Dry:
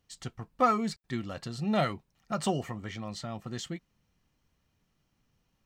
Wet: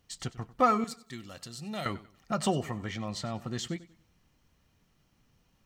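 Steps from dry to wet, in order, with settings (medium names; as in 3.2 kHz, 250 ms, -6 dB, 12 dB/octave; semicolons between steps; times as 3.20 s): 0.84–1.86 s: pre-emphasis filter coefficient 0.8; in parallel at -1.5 dB: compression, threshold -43 dBFS, peak gain reduction 22 dB; on the sum: modulated delay 95 ms, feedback 32%, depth 65 cents, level -18 dB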